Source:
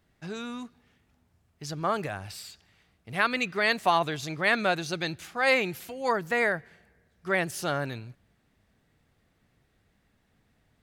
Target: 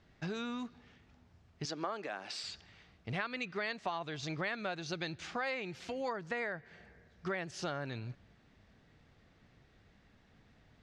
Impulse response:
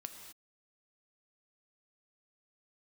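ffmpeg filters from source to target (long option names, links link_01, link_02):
-filter_complex "[0:a]asettb=1/sr,asplit=3[link_01][link_02][link_03];[link_01]atrim=end=1.654[link_04];[link_02]atrim=start=1.65:end=2.44,asetpts=PTS-STARTPTS,afade=type=in:duration=0.004:curve=qsin,afade=type=out:start_time=0.786:duration=0.004:curve=qsin,highpass=frequency=240:width=0.5412,highpass=frequency=240:width=1.3066[link_05];[link_03]atrim=start=2.436[link_06];[link_04][link_05]acrossfade=duration=0.004:curve1=hsin:curve2=qsin[link_07];[link_07][link_06]acrossfade=duration=0.004:curve1=qsin:curve2=hsin,acompressor=threshold=-40dB:ratio=6,lowpass=frequency=6200:width=0.5412,lowpass=frequency=6200:width=1.3066,volume=4dB"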